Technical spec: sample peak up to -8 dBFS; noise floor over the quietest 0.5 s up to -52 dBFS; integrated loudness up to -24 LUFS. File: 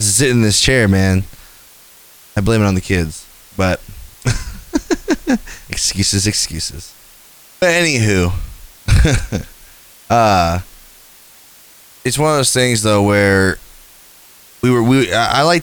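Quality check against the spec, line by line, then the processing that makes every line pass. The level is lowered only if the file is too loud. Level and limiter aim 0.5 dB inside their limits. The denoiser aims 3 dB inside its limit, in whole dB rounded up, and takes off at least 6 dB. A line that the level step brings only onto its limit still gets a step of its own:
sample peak -2.0 dBFS: fail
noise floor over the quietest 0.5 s -43 dBFS: fail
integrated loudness -15.0 LUFS: fail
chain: gain -9.5 dB

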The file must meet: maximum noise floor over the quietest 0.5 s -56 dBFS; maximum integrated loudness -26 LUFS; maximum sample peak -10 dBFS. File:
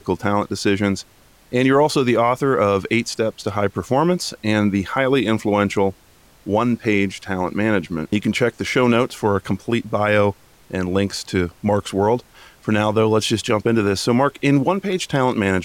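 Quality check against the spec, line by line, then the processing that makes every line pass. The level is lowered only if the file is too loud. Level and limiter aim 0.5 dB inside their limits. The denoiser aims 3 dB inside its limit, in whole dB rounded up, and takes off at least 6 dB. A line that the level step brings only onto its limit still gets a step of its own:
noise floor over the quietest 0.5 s -51 dBFS: fail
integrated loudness -19.5 LUFS: fail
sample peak -6.0 dBFS: fail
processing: gain -7 dB

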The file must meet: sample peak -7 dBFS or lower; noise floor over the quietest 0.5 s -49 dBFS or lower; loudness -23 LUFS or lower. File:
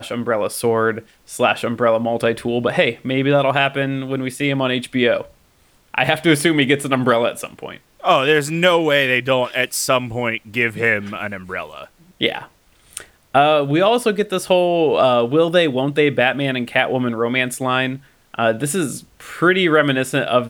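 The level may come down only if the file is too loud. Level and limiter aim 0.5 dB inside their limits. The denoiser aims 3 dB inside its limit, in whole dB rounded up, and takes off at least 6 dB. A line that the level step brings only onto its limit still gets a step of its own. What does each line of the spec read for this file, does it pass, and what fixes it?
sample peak -2.0 dBFS: fail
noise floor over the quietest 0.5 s -56 dBFS: OK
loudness -17.5 LUFS: fail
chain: gain -6 dB

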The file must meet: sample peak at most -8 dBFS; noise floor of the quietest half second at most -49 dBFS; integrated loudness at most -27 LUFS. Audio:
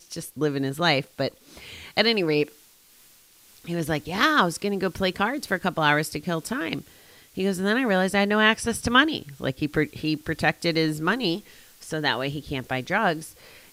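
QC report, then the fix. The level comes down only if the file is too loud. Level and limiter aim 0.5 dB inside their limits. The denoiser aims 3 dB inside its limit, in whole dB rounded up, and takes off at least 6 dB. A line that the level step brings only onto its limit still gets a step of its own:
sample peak -4.5 dBFS: fail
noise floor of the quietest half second -55 dBFS: OK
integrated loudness -24.5 LUFS: fail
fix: gain -3 dB; limiter -8.5 dBFS

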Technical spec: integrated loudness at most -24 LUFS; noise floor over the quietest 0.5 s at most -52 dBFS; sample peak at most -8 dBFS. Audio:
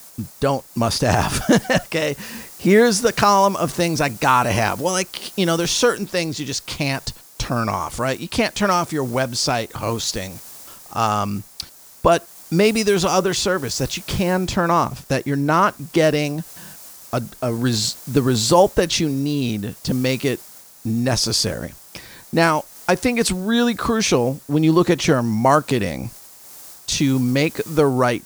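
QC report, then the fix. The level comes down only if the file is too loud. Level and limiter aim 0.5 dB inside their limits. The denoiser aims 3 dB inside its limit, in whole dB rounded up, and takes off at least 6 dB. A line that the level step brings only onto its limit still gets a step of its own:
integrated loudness -19.5 LUFS: fail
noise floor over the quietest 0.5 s -42 dBFS: fail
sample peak -3.0 dBFS: fail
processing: denoiser 8 dB, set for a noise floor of -42 dBFS; gain -5 dB; limiter -8.5 dBFS

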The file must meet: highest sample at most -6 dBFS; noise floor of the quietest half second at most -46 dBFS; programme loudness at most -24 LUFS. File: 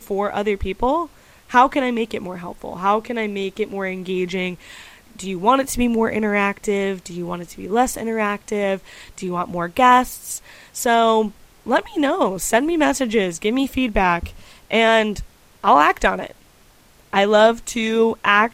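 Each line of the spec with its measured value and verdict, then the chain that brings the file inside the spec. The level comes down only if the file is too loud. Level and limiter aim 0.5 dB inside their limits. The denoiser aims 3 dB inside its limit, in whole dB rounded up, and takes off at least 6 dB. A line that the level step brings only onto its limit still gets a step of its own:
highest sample -2.0 dBFS: fail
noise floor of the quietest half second -51 dBFS: OK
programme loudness -19.5 LUFS: fail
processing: gain -5 dB

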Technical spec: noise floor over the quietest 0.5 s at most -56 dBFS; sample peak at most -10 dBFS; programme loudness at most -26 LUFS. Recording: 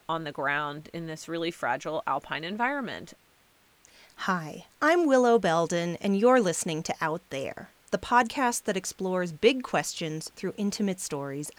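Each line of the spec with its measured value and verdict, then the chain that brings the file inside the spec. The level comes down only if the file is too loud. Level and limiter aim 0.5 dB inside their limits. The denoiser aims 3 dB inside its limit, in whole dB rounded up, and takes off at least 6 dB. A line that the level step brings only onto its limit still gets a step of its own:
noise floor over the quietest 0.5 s -63 dBFS: OK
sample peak -8.0 dBFS: fail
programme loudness -27.5 LUFS: OK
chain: limiter -10.5 dBFS

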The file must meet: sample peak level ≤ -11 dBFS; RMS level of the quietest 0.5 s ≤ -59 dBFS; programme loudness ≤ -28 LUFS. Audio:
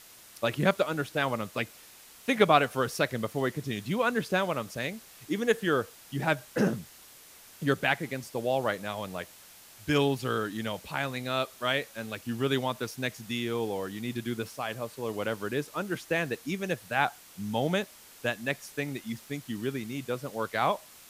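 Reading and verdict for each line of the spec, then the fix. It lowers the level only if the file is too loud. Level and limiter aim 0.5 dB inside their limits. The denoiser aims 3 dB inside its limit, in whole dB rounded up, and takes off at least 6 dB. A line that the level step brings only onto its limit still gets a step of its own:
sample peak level -7.0 dBFS: fail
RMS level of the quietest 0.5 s -53 dBFS: fail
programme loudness -30.5 LUFS: OK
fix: denoiser 9 dB, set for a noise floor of -53 dBFS; limiter -11.5 dBFS

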